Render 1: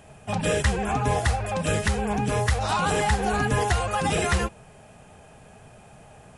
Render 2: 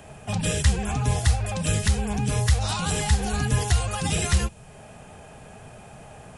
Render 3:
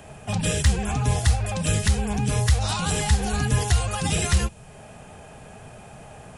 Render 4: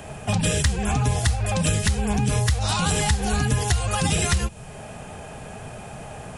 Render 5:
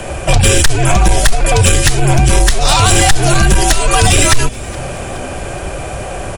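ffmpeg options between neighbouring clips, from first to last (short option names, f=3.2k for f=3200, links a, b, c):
-filter_complex "[0:a]acrossover=split=180|3000[a][b][c];[b]acompressor=threshold=-45dB:ratio=2[d];[a][d][c]amix=inputs=3:normalize=0,volume=4.5dB"
-af "aeval=exprs='0.447*(cos(1*acos(clip(val(0)/0.447,-1,1)))-cos(1*PI/2))+0.0316*(cos(5*acos(clip(val(0)/0.447,-1,1)))-cos(5*PI/2))+0.0141*(cos(7*acos(clip(val(0)/0.447,-1,1)))-cos(7*PI/2))+0.00282*(cos(8*acos(clip(val(0)/0.447,-1,1)))-cos(8*PI/2))':c=same"
-af "acompressor=threshold=-24dB:ratio=6,volume=6dB"
-filter_complex "[0:a]afreqshift=-73,aeval=exprs='0.473*sin(PI/2*2.24*val(0)/0.473)':c=same,asplit=5[a][b][c][d][e];[b]adelay=420,afreqshift=-130,volume=-22.5dB[f];[c]adelay=840,afreqshift=-260,volume=-27.1dB[g];[d]adelay=1260,afreqshift=-390,volume=-31.7dB[h];[e]adelay=1680,afreqshift=-520,volume=-36.2dB[i];[a][f][g][h][i]amix=inputs=5:normalize=0,volume=4dB"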